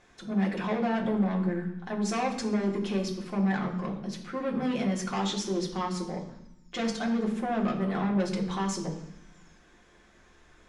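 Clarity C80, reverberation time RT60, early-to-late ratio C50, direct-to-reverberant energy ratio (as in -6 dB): 10.5 dB, 0.85 s, 8.0 dB, -2.0 dB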